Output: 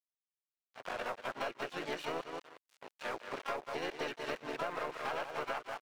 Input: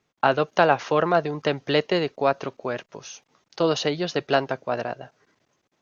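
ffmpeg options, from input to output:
-filter_complex "[0:a]areverse,aresample=11025,asoftclip=type=hard:threshold=-14dB,aresample=44100,lowpass=f=2.7k:w=0.5412,lowpass=f=2.7k:w=1.3066,asplit=2[a][b];[b]aecho=0:1:182|364|546:0.355|0.0923|0.024[c];[a][c]amix=inputs=2:normalize=0,asplit=4[d][e][f][g];[e]asetrate=37084,aresample=44100,atempo=1.18921,volume=-3dB[h];[f]asetrate=66075,aresample=44100,atempo=0.66742,volume=-9dB[i];[g]asetrate=88200,aresample=44100,atempo=0.5,volume=-12dB[j];[d][h][i][j]amix=inputs=4:normalize=0,agate=range=-33dB:threshold=-46dB:ratio=3:detection=peak,aeval=exprs='sgn(val(0))*max(abs(val(0))-0.0112,0)':c=same,highpass=f=1.2k:p=1,aeval=exprs='0.282*(cos(1*acos(clip(val(0)/0.282,-1,1)))-cos(1*PI/2))+0.01*(cos(8*acos(clip(val(0)/0.282,-1,1)))-cos(8*PI/2))':c=same,acompressor=threshold=-33dB:ratio=6,volume=-2dB"

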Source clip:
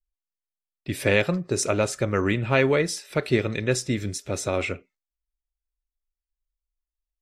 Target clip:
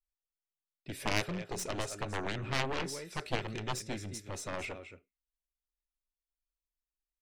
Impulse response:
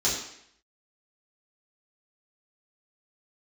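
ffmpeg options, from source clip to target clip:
-af "aecho=1:1:222:0.251,aeval=exprs='0.501*(cos(1*acos(clip(val(0)/0.501,-1,1)))-cos(1*PI/2))+0.224*(cos(3*acos(clip(val(0)/0.501,-1,1)))-cos(3*PI/2))+0.0562*(cos(4*acos(clip(val(0)/0.501,-1,1)))-cos(4*PI/2))+0.0282*(cos(5*acos(clip(val(0)/0.501,-1,1)))-cos(5*PI/2))+0.0447*(cos(7*acos(clip(val(0)/0.501,-1,1)))-cos(7*PI/2))':c=same,volume=-7dB"

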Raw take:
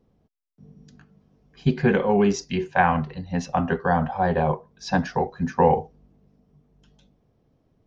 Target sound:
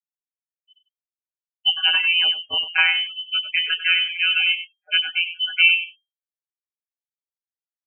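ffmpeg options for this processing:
-filter_complex "[0:a]highshelf=f=2.1k:g=6,afftfilt=real='re*gte(hypot(re,im),0.0562)':imag='im*gte(hypot(re,im),0.0562)':win_size=1024:overlap=0.75,afftfilt=real='hypot(re,im)*cos(PI*b)':imag='0':win_size=1024:overlap=0.75,asplit=2[a][b];[b]aecho=0:1:97:0.251[c];[a][c]amix=inputs=2:normalize=0,lowpass=f=2.7k:t=q:w=0.5098,lowpass=f=2.7k:t=q:w=0.6013,lowpass=f=2.7k:t=q:w=0.9,lowpass=f=2.7k:t=q:w=2.563,afreqshift=-3200,volume=4dB"

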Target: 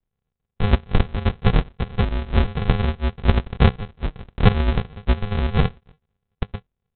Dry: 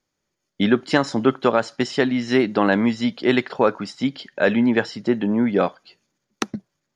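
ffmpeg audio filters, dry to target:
-af "highpass=f=390:p=1,aresample=8000,acrusher=samples=26:mix=1:aa=0.000001,aresample=44100,volume=3.5dB"

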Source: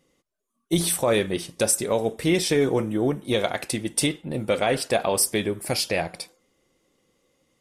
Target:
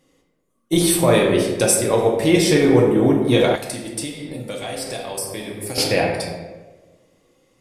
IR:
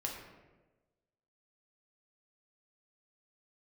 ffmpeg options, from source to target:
-filter_complex "[1:a]atrim=start_sample=2205,asetrate=40131,aresample=44100[a];[0:a][a]afir=irnorm=-1:irlink=0,asettb=1/sr,asplit=3[b][c][d];[b]atrim=end=3.554[e];[c]atrim=start=3.55:end=5.78,asetpts=PTS-STARTPTS,afade=t=in:d=0.004:c=qsin,afade=t=out:st=2.226:d=0.004:c=qsin,acrossover=split=81|4100[f][g][h];[f]acompressor=threshold=-56dB:ratio=4[i];[g]acompressor=threshold=-35dB:ratio=4[j];[h]acompressor=threshold=-34dB:ratio=4[k];[i][j][k]amix=inputs=3:normalize=0[l];[d]atrim=start=5.776[m];[e][l]acrossfade=d=0.004:c1=hsin:c2=qsin[n];[n][m]acrossfade=d=0.004:c1=qsin:c2=hsin,volume=5dB"

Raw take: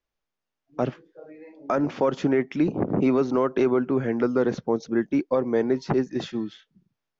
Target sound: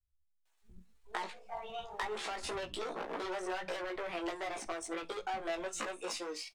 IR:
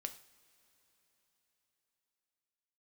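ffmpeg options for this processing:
-filter_complex "[0:a]aeval=exprs='if(lt(val(0),0),0.708*val(0),val(0))':c=same,highshelf=f=3k:g=4.5,bandreject=f=3.4k:w=17,asetrate=64194,aresample=44100,atempo=0.686977,aeval=exprs='(tanh(20*val(0)+0.15)-tanh(0.15))/20':c=same,equalizer=f=125:t=o:w=1:g=-8,equalizer=f=250:t=o:w=1:g=-11,equalizer=f=500:t=o:w=1:g=-6,acompressor=threshold=-44dB:ratio=8,flanger=delay=16.5:depth=2.1:speed=0.3,acrossover=split=190[a][b];[b]adelay=500[c];[a][c]amix=inputs=2:normalize=0,atempo=1.1,asplit=2[d][e];[1:a]atrim=start_sample=2205,atrim=end_sample=3969,asetrate=52920,aresample=44100[f];[e][f]afir=irnorm=-1:irlink=0,volume=5.5dB[g];[d][g]amix=inputs=2:normalize=0,volume=5dB"

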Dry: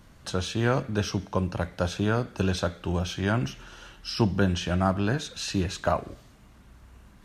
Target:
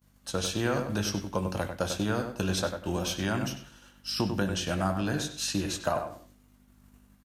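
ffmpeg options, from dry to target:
-filter_complex "[0:a]aeval=exprs='val(0)+0.00631*(sin(2*PI*50*n/s)+sin(2*PI*2*50*n/s)/2+sin(2*PI*3*50*n/s)/3+sin(2*PI*4*50*n/s)/4+sin(2*PI*5*50*n/s)/5)':c=same,asplit=2[a][b];[b]adelay=20,volume=-11dB[c];[a][c]amix=inputs=2:normalize=0,acompressor=threshold=-26dB:ratio=3,lowshelf=f=430:g=7,agate=range=-33dB:threshold=-26dB:ratio=3:detection=peak,aemphasis=mode=production:type=bsi,bandreject=f=410:w=12,asplit=2[d][e];[e]adelay=96,lowpass=f=2.5k:p=1,volume=-6.5dB,asplit=2[f][g];[g]adelay=96,lowpass=f=2.5k:p=1,volume=0.27,asplit=2[h][i];[i]adelay=96,lowpass=f=2.5k:p=1,volume=0.27[j];[f][h][j]amix=inputs=3:normalize=0[k];[d][k]amix=inputs=2:normalize=0"

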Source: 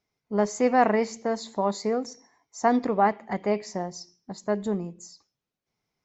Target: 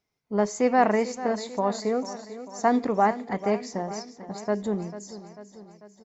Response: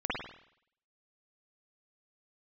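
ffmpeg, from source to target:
-af "aecho=1:1:444|888|1332|1776|2220|2664:0.2|0.116|0.0671|0.0389|0.0226|0.0131"

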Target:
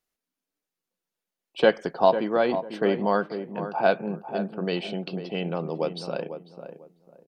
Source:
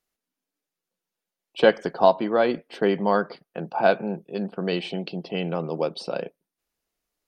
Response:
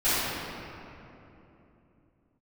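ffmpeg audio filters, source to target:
-filter_complex "[0:a]asplit=2[a][b];[b]adelay=497,lowpass=f=1.1k:p=1,volume=-9dB,asplit=2[c][d];[d]adelay=497,lowpass=f=1.1k:p=1,volume=0.26,asplit=2[e][f];[f]adelay=497,lowpass=f=1.1k:p=1,volume=0.26[g];[a][c][e][g]amix=inputs=4:normalize=0,volume=-2dB"

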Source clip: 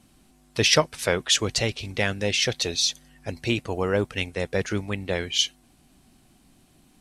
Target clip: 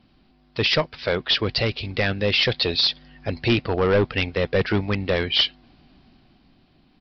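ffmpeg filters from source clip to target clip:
-af "dynaudnorm=f=220:g=11:m=11.5dB,aresample=11025,asoftclip=type=hard:threshold=-13.5dB,aresample=44100"

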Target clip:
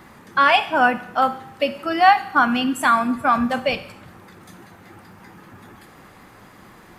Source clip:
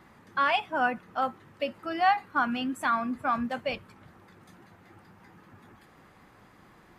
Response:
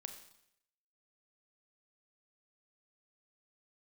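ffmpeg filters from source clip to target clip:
-filter_complex "[0:a]bandreject=f=51.49:t=h:w=4,bandreject=f=102.98:t=h:w=4,bandreject=f=154.47:t=h:w=4,asplit=2[a][b];[1:a]atrim=start_sample=2205,highshelf=f=5.2k:g=10.5[c];[b][c]afir=irnorm=-1:irlink=0,volume=2dB[d];[a][d]amix=inputs=2:normalize=0,volume=5dB"

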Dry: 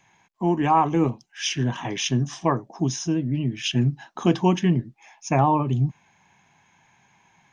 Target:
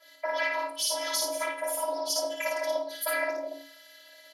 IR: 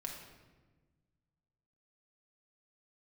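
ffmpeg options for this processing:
-filter_complex "[0:a]acompressor=threshold=-35dB:ratio=6,asplit=2[a][b];[1:a]atrim=start_sample=2205,afade=t=out:st=0.38:d=0.01,atrim=end_sample=17199[c];[b][c]afir=irnorm=-1:irlink=0,volume=2dB[d];[a][d]amix=inputs=2:normalize=0,afftfilt=real='hypot(re,im)*cos(2*PI*random(0))':imag='hypot(re,im)*sin(2*PI*random(1))':win_size=512:overlap=0.75,aecho=1:1:96.21|142.9:0.794|0.316,asetrate=76440,aresample=44100,highpass=88,afftfilt=real='hypot(re,im)*cos(PI*b)':imag='0':win_size=512:overlap=0.75,afreqshift=280,adynamicequalizer=threshold=0.00251:dfrequency=2100:dqfactor=0.7:tfrequency=2100:tqfactor=0.7:attack=5:release=100:ratio=0.375:range=2:mode=boostabove:tftype=highshelf,volume=8dB"

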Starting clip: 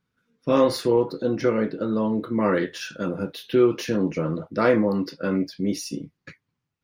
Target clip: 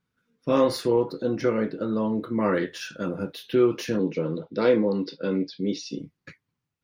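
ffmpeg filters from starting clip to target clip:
-filter_complex "[0:a]asettb=1/sr,asplit=3[a][b][c];[a]atrim=end=3.994[d];[b]atrim=start=3.99:end=5.99,asetpts=PTS-STARTPTS,afade=t=in:d=0.004:c=qsin,afade=t=out:st=1.996:d=0.004:c=qsin,highpass=140,equalizer=f=450:t=q:w=4:g=6,equalizer=f=660:t=q:w=4:g=-7,equalizer=f=1.2k:t=q:w=4:g=-8,equalizer=f=1.8k:t=q:w=4:g=-6,equalizer=f=3.7k:t=q:w=4:g=9,lowpass=f=5.4k:w=0.5412,lowpass=f=5.4k:w=1.3066[e];[c]atrim=start=5.986[f];[d][e]acrossfade=d=0.004:c1=hsin:c2=qsin[g];[g][f]acrossfade=d=0.004:c1=qsin:c2=hsin,volume=-2dB"

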